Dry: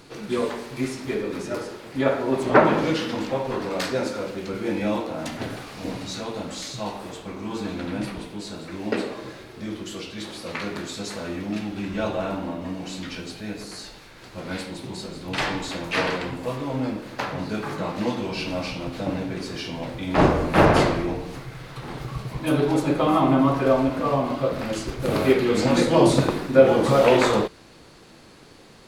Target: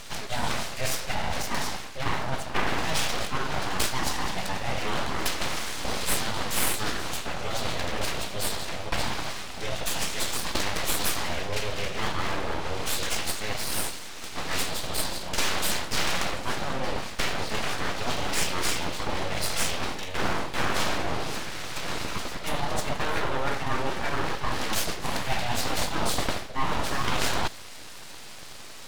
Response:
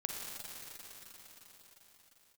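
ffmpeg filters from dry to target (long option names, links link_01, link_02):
-af "adynamicsmooth=sensitivity=7:basefreq=7000,equalizer=frequency=98:width_type=o:width=1.2:gain=-13,areverse,acompressor=threshold=-31dB:ratio=5,areverse,highshelf=frequency=2900:gain=11,aeval=exprs='abs(val(0))':channel_layout=same,volume=7.5dB"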